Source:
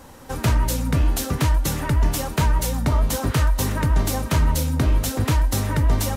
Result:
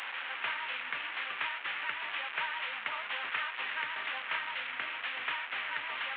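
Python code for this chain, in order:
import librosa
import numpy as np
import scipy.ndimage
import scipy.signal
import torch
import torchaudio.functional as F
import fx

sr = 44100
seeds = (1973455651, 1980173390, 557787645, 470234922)

y = fx.delta_mod(x, sr, bps=16000, step_db=-24.0)
y = scipy.signal.sosfilt(scipy.signal.cheby1(2, 1.0, 1800.0, 'highpass', fs=sr, output='sos'), y)
y = F.gain(torch.from_numpy(y), -1.5).numpy()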